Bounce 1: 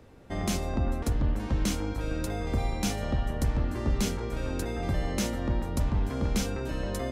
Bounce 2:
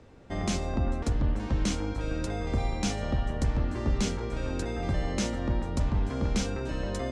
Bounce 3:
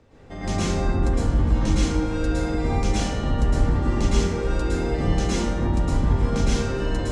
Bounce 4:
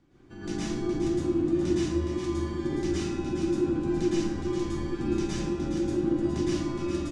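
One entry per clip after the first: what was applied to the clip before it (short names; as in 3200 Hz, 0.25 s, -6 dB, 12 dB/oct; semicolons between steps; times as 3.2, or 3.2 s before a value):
LPF 8300 Hz 24 dB/oct
plate-style reverb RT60 1.1 s, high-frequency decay 0.55×, pre-delay 0.1 s, DRR -9 dB; gain -3 dB
echo 0.416 s -7 dB; frequency shift -390 Hz; gain -8 dB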